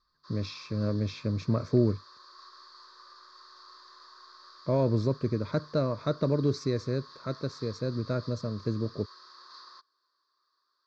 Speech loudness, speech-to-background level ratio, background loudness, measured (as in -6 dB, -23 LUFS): -30.5 LUFS, 20.0 dB, -50.5 LUFS